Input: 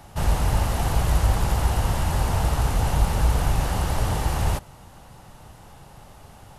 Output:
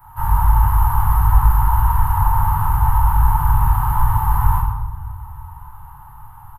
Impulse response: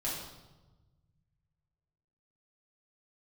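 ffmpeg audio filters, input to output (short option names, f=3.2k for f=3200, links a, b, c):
-filter_complex "[0:a]firequalizer=gain_entry='entry(100,0);entry(250,-25);entry(360,-15);entry(580,-30);entry(890,11);entry(2300,-12);entry(5600,-28);entry(13000,12)':delay=0.05:min_phase=1[a];[1:a]atrim=start_sample=2205[b];[a][b]afir=irnorm=-1:irlink=0,volume=-1.5dB"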